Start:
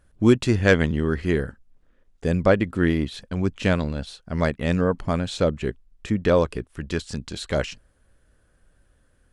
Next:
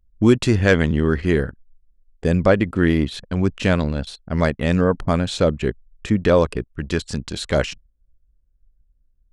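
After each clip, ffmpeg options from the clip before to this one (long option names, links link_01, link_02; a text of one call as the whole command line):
ffmpeg -i in.wav -filter_complex "[0:a]anlmdn=0.158,asplit=2[link_01][link_02];[link_02]alimiter=limit=-12.5dB:level=0:latency=1,volume=0.5dB[link_03];[link_01][link_03]amix=inputs=2:normalize=0,volume=-1.5dB" out.wav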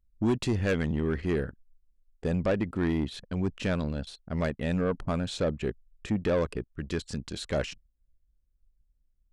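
ffmpeg -i in.wav -af "equalizer=frequency=300:width_type=o:width=2.2:gain=2,asoftclip=type=tanh:threshold=-11dB,volume=-9dB" out.wav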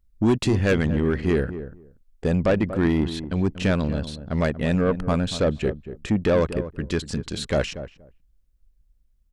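ffmpeg -i in.wav -filter_complex "[0:a]asplit=2[link_01][link_02];[link_02]adelay=237,lowpass=frequency=860:poles=1,volume=-11dB,asplit=2[link_03][link_04];[link_04]adelay=237,lowpass=frequency=860:poles=1,volume=0.16[link_05];[link_01][link_03][link_05]amix=inputs=3:normalize=0,volume=6.5dB" out.wav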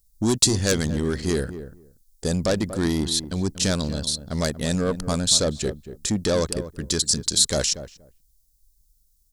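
ffmpeg -i in.wav -af "aexciter=amount=11.4:drive=3.8:freq=3900,volume=-2.5dB" out.wav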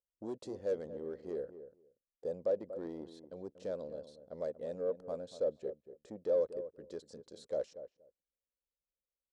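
ffmpeg -i in.wav -af "bandpass=frequency=520:width_type=q:width=5.1:csg=0,volume=-5dB" out.wav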